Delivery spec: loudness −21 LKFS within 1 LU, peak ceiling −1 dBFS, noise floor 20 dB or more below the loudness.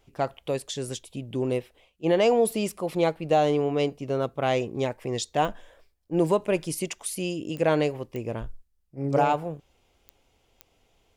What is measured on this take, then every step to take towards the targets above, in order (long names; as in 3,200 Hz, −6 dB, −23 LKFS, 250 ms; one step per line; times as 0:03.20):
number of clicks 5; integrated loudness −27.0 LKFS; sample peak −11.5 dBFS; target loudness −21.0 LKFS
→ click removal
level +6 dB